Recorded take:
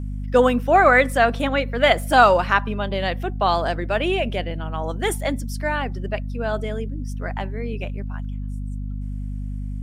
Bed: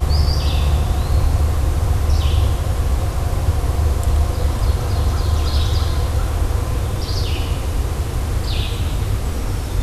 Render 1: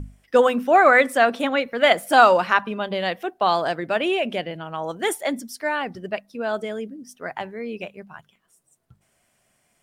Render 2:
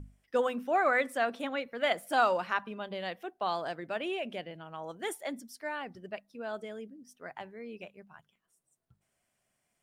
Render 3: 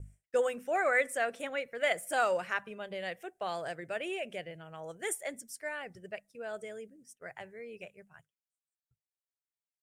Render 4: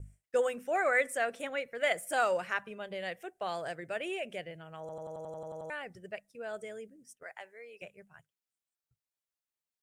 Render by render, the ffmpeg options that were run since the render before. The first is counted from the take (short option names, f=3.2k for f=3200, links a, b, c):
-af "bandreject=f=50:t=h:w=6,bandreject=f=100:t=h:w=6,bandreject=f=150:t=h:w=6,bandreject=f=200:t=h:w=6,bandreject=f=250:t=h:w=6"
-af "volume=-12.5dB"
-af "agate=range=-33dB:threshold=-52dB:ratio=3:detection=peak,equalizer=f=125:t=o:w=1:g=6,equalizer=f=250:t=o:w=1:g=-11,equalizer=f=500:t=o:w=1:g=4,equalizer=f=1k:t=o:w=1:g=-9,equalizer=f=2k:t=o:w=1:g=5,equalizer=f=4k:t=o:w=1:g=-9,equalizer=f=8k:t=o:w=1:g=11"
-filter_complex "[0:a]asettb=1/sr,asplit=3[a][b][c];[a]atrim=end=7.234[d];[b]atrim=start=7.23:end=7.82,asetpts=PTS-STARTPTS,afade=t=in:d=0.004:c=qsin,afade=t=out:st=0.586:d=0.004:c=qsin,highpass=560[e];[c]atrim=start=7.816[f];[d][e]acrossfade=d=0.004:c1=hsin:c2=qsin[g];[g][f]acrossfade=d=0.004:c1=qsin:c2=hsin,asplit=11[h][i][j][k][l][m][n][o][p][q][r];[h]atrim=end=4.892[s];[i]atrim=start=4.798:end=4.892[t];[j]atrim=start=4.798:end=4.892[u];[k]atrim=start=4.798:end=4.892[v];[l]atrim=start=4.798:end=4.892[w];[m]atrim=start=4.798:end=4.892[x];[n]atrim=start=4.798:end=4.892[y];[o]atrim=start=4.798:end=4.892[z];[p]atrim=start=4.798:end=4.892[aa];[q]atrim=start=4.798:end=4.892[ab];[r]atrim=start=5.698[ac];[s][t]acrossfade=d=0.004:c1=hsin:c2=hsin[ad];[ad][u]acrossfade=d=0.004:c1=hsin:c2=hsin[ae];[ae][v]acrossfade=d=0.004:c1=hsin:c2=hsin[af];[af][w]acrossfade=d=0.004:c1=hsin:c2=hsin[ag];[ag][x]acrossfade=d=0.004:c1=hsin:c2=hsin[ah];[ah][y]acrossfade=d=0.004:c1=hsin:c2=hsin[ai];[ai][z]acrossfade=d=0.004:c1=hsin:c2=hsin[aj];[aj][aa]acrossfade=d=0.004:c1=hsin:c2=hsin[ak];[ak][ab]acrossfade=d=0.004:c1=hsin:c2=hsin[al];[al][ac]acrossfade=d=0.004:c1=hsin:c2=hsin"